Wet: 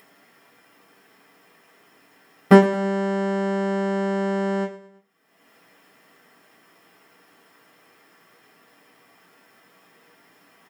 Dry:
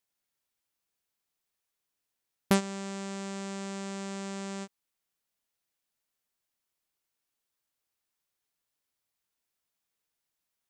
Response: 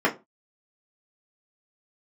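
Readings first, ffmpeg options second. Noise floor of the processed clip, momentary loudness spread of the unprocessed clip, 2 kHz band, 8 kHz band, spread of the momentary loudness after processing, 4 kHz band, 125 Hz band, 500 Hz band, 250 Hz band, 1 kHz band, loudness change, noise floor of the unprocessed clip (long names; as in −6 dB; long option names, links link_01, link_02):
−58 dBFS, 10 LU, +12.5 dB, can't be measured, 10 LU, +3.0 dB, +13.0 dB, +17.0 dB, +13.5 dB, +14.0 dB, +13.5 dB, −85 dBFS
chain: -filter_complex "[0:a]aecho=1:1:109|218|327:0.178|0.0676|0.0257[link_01];[1:a]atrim=start_sample=2205[link_02];[link_01][link_02]afir=irnorm=-1:irlink=0,acompressor=mode=upward:threshold=-31dB:ratio=2.5,volume=-4.5dB"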